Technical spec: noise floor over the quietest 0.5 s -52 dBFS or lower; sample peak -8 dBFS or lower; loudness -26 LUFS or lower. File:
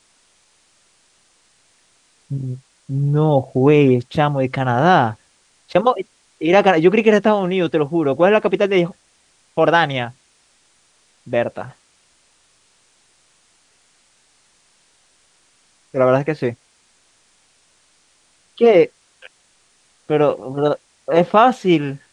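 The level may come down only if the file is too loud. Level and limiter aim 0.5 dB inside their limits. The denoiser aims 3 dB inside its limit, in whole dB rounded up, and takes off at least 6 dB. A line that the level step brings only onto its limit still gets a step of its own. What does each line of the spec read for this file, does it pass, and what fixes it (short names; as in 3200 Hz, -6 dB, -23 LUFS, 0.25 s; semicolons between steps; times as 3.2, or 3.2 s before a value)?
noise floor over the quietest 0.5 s -58 dBFS: OK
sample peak -2.5 dBFS: fail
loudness -17.0 LUFS: fail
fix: gain -9.5 dB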